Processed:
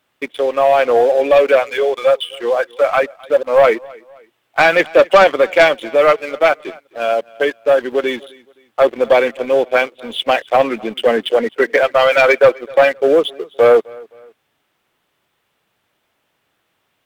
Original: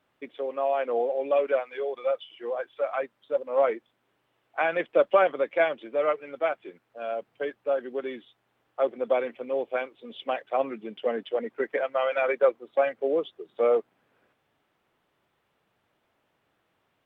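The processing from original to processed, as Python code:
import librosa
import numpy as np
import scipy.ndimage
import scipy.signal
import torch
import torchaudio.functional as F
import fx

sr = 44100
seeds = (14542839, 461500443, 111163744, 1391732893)

p1 = fx.high_shelf(x, sr, hz=2300.0, db=10.5)
p2 = fx.leveller(p1, sr, passes=2)
p3 = p2 + fx.echo_feedback(p2, sr, ms=260, feedback_pct=37, wet_db=-24, dry=0)
y = F.gain(torch.from_numpy(p3), 6.5).numpy()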